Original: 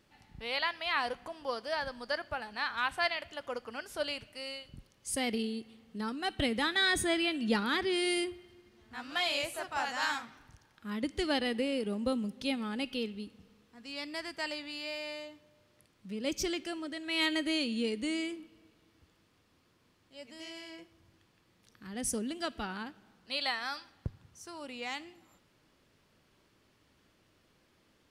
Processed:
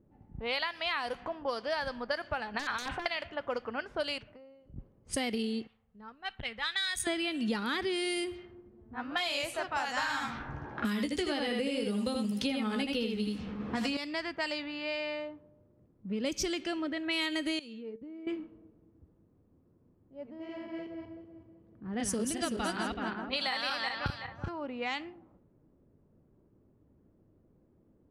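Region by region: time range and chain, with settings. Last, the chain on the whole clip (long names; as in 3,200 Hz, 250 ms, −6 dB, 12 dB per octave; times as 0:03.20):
0:02.54–0:03.06: wrap-around overflow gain 23.5 dB + high-shelf EQ 11,000 Hz +4 dB + compressor whose output falls as the input rises −39 dBFS
0:04.18–0:04.76: downward compressor 12 to 1, threshold −51 dBFS + multiband upward and downward expander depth 70%
0:05.67–0:07.07: guitar amp tone stack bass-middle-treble 10-0-10 + saturating transformer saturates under 970 Hz
0:09.97–0:13.97: double-tracking delay 14 ms −6.5 dB + single-tap delay 78 ms −4.5 dB + multiband upward and downward compressor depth 100%
0:17.59–0:18.27: high-pass filter 61 Hz + output level in coarse steps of 20 dB + tuned comb filter 450 Hz, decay 0.27 s, mix 70%
0:20.30–0:24.49: feedback delay that plays each chunk backwards 189 ms, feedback 57%, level −2 dB + high-pass filter 43 Hz + high-shelf EQ 6,000 Hz −3 dB
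whole clip: low-pass that shuts in the quiet parts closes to 390 Hz, open at −30.5 dBFS; downward compressor, threshold −36 dBFS; level +6.5 dB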